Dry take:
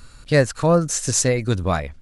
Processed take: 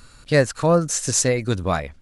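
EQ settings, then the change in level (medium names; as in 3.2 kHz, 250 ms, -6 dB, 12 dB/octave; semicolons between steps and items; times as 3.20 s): bass shelf 100 Hz -6 dB; 0.0 dB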